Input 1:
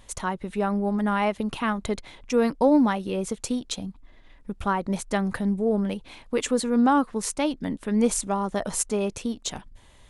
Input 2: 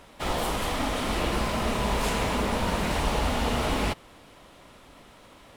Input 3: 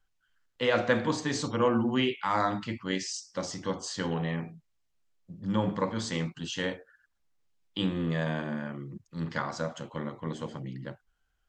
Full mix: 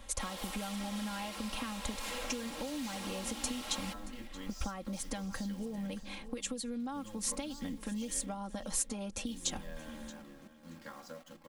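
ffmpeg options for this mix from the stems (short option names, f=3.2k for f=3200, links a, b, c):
-filter_complex "[0:a]acompressor=threshold=-29dB:ratio=6,volume=-2.5dB,asplit=2[a][b];[b]volume=-19.5dB[c];[1:a]highpass=f=790:p=1,volume=-10.5dB,asplit=2[d][e];[e]volume=-23.5dB[f];[2:a]acompressor=threshold=-32dB:ratio=2,acrusher=bits=8:dc=4:mix=0:aa=0.000001,adelay=1500,volume=-15dB,asplit=2[g][h];[h]volume=-12.5dB[i];[c][f][i]amix=inputs=3:normalize=0,aecho=0:1:627|1254|1881:1|0.18|0.0324[j];[a][d][g][j]amix=inputs=4:normalize=0,aecho=1:1:3.7:0.78,acrossover=split=130|3000[k][l][m];[l]acompressor=threshold=-39dB:ratio=6[n];[k][n][m]amix=inputs=3:normalize=0"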